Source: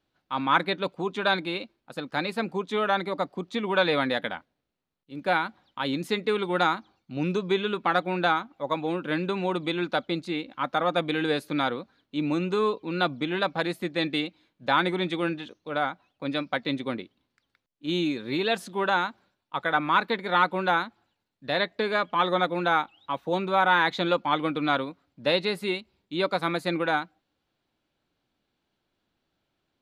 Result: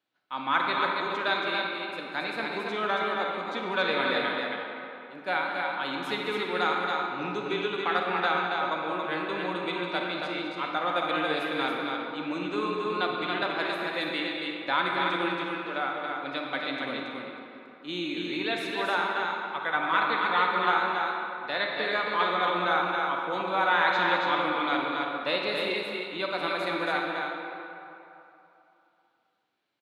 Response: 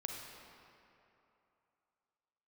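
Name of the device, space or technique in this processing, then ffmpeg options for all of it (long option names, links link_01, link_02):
stadium PA: -filter_complex "[0:a]highpass=190,equalizer=frequency=2100:width_type=o:width=2.6:gain=6.5,aecho=1:1:204.1|277:0.251|0.631[link_01];[1:a]atrim=start_sample=2205[link_02];[link_01][link_02]afir=irnorm=-1:irlink=0,volume=-6dB"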